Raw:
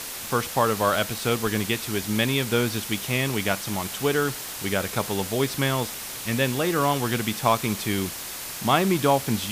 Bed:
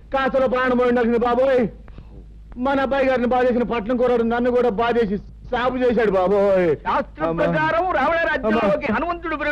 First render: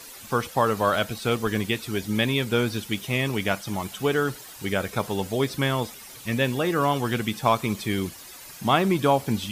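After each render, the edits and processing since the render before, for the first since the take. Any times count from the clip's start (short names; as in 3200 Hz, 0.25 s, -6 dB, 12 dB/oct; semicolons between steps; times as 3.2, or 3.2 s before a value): denoiser 12 dB, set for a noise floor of -35 dBFS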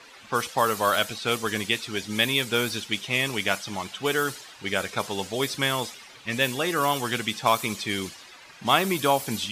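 low-pass opened by the level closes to 2200 Hz, open at -18 dBFS; tilt +2.5 dB/oct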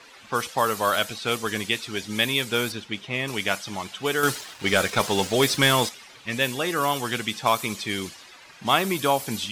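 2.72–3.28 LPF 2000 Hz 6 dB/oct; 4.23–5.89 sample leveller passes 2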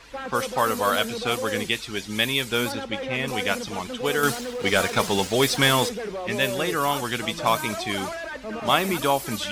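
add bed -14 dB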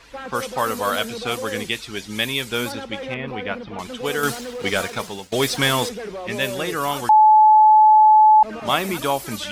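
3.14–3.79 air absorption 380 m; 4.67–5.32 fade out, to -19.5 dB; 7.09–8.43 bleep 861 Hz -8 dBFS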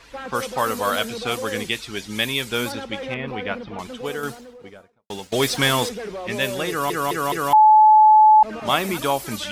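3.48–5.1 studio fade out; 6.69 stutter in place 0.21 s, 4 plays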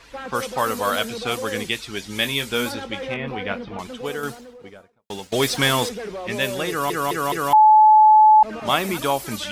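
2.04–3.77 doubler 21 ms -9 dB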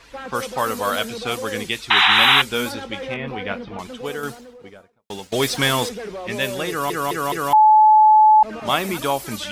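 1.9–2.42 painted sound noise 730–4000 Hz -14 dBFS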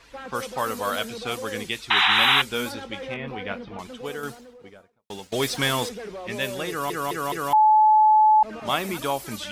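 gain -4.5 dB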